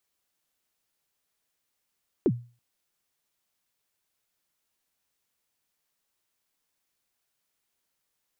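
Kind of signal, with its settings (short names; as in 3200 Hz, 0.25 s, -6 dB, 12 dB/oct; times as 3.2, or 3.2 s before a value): kick drum length 0.33 s, from 440 Hz, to 120 Hz, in 53 ms, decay 0.35 s, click off, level -15.5 dB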